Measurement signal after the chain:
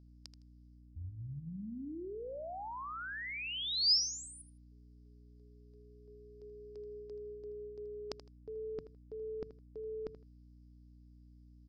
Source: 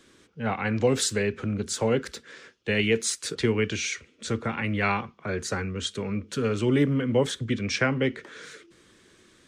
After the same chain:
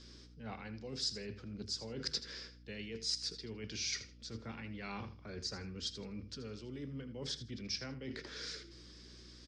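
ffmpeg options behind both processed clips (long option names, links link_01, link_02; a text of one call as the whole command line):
ffmpeg -i in.wav -af "equalizer=frequency=1500:width=0.31:gain=-6,bandreject=frequency=50:width_type=h:width=6,bandreject=frequency=100:width_type=h:width=6,bandreject=frequency=150:width_type=h:width=6,areverse,acompressor=threshold=-40dB:ratio=16,areverse,lowpass=frequency=5000:width_type=q:width=8.2,aeval=exprs='val(0)+0.00178*(sin(2*PI*60*n/s)+sin(2*PI*2*60*n/s)/2+sin(2*PI*3*60*n/s)/3+sin(2*PI*4*60*n/s)/4+sin(2*PI*5*60*n/s)/5)':channel_layout=same,aecho=1:1:80|160:0.224|0.047,volume=-2dB" out.wav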